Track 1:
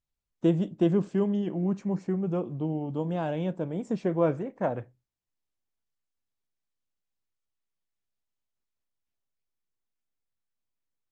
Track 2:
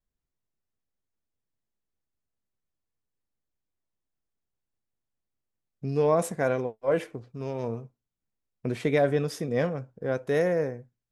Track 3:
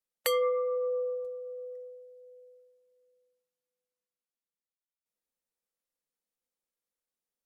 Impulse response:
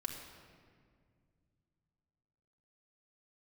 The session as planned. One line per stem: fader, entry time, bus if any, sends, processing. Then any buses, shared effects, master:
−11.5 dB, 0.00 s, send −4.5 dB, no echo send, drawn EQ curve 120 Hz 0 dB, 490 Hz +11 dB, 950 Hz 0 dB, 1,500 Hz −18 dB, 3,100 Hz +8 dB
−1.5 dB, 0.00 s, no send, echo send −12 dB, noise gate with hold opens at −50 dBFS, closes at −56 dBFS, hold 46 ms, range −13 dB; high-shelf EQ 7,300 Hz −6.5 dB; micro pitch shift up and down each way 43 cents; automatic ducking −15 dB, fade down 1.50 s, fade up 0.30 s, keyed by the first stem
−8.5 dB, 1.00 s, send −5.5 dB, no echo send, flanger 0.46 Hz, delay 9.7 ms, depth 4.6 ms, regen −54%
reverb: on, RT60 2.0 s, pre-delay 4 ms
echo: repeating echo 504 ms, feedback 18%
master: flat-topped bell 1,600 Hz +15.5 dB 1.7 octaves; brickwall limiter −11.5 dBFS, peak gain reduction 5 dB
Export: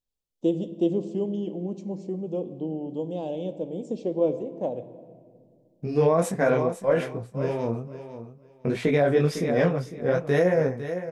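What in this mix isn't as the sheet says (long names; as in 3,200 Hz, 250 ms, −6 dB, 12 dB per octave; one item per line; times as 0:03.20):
stem 2 −1.5 dB → +8.5 dB
stem 3: muted
master: missing flat-topped bell 1,600 Hz +15.5 dB 1.7 octaves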